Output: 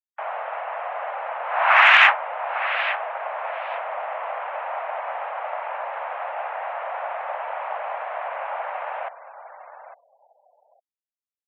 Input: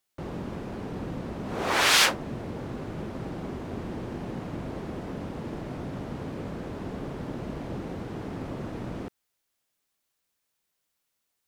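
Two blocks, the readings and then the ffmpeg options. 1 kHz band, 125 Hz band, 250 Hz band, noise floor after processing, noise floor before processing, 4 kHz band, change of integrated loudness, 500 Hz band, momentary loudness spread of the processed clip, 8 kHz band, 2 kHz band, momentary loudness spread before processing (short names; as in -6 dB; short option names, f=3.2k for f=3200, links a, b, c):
+12.5 dB, under -35 dB, under -35 dB, under -85 dBFS, -80 dBFS, 0.0 dB, +7.5 dB, +5.5 dB, 15 LU, under -20 dB, +11.5 dB, 13 LU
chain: -af "aecho=1:1:855|1710:0.237|0.0474,afftfilt=real='re*gte(hypot(re,im),0.002)':imag='im*gte(hypot(re,im),0.002)':win_size=1024:overlap=0.75,highpass=f=390:t=q:w=0.5412,highpass=f=390:t=q:w=1.307,lowpass=f=2.4k:t=q:w=0.5176,lowpass=f=2.4k:t=q:w=0.7071,lowpass=f=2.4k:t=q:w=1.932,afreqshift=280,acontrast=80,volume=4.5dB"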